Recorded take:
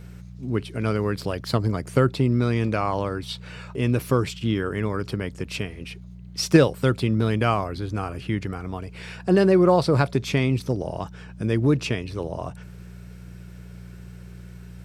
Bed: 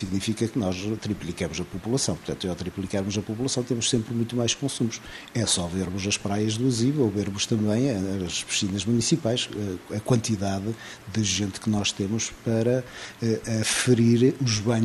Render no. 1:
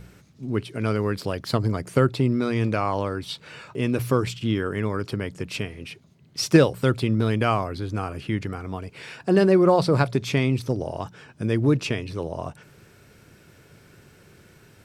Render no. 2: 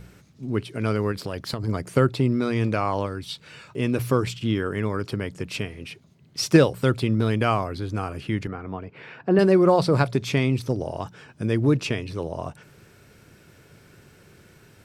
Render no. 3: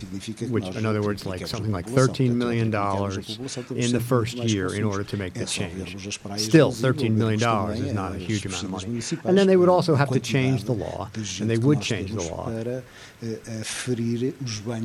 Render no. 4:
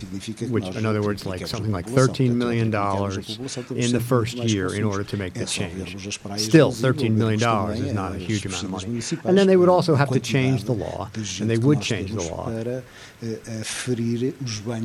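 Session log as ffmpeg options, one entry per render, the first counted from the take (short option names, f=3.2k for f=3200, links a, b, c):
-af "bandreject=f=60:t=h:w=4,bandreject=f=120:t=h:w=4,bandreject=f=180:t=h:w=4"
-filter_complex "[0:a]asplit=3[a][b][c];[a]afade=t=out:st=1.11:d=0.02[d];[b]acompressor=threshold=-23dB:ratio=10:attack=3.2:release=140:knee=1:detection=peak,afade=t=in:st=1.11:d=0.02,afade=t=out:st=1.67:d=0.02[e];[c]afade=t=in:st=1.67:d=0.02[f];[d][e][f]amix=inputs=3:normalize=0,asettb=1/sr,asplit=3[g][h][i];[g]atrim=end=3.064[j];[h]atrim=start=3.06:end=3.76,asetpts=PTS-STARTPTS,afade=t=in:d=0.004:c=qsin,afade=t=out:st=0.696:d=0.004:c=qsin,equalizer=f=720:t=o:w=2.9:g=-5.5[k];[i]atrim=start=3.756[l];[j][k]acrossfade=d=0.004:c1=hsin:c2=qsin[m];[m][l]acrossfade=d=0.004:c1=qsin:c2=hsin,asettb=1/sr,asplit=3[n][o][p];[n]atrim=end=8.474[q];[o]atrim=start=8.47:end=9.39,asetpts=PTS-STARTPTS,afade=t=in:d=0.004:c=qsin,afade=t=out:st=0.916:d=0.004:c=qsin,highpass=100,lowpass=2.2k[r];[p]atrim=start=9.386[s];[q][r]acrossfade=d=0.004:c1=hsin:c2=qsin[t];[t][s]acrossfade=d=0.004:c1=qsin:c2=hsin"
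-filter_complex "[1:a]volume=-6.5dB[a];[0:a][a]amix=inputs=2:normalize=0"
-af "volume=1.5dB"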